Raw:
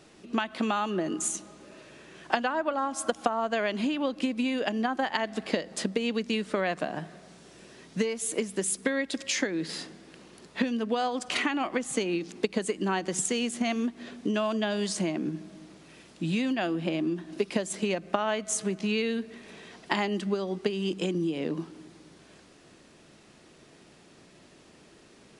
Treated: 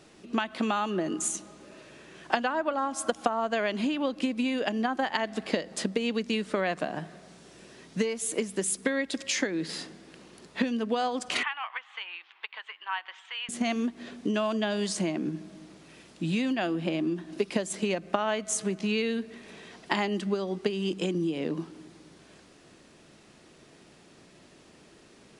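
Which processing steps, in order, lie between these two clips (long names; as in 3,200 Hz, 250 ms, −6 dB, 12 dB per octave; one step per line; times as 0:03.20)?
0:11.43–0:13.49: elliptic band-pass filter 920–3,300 Hz, stop band 80 dB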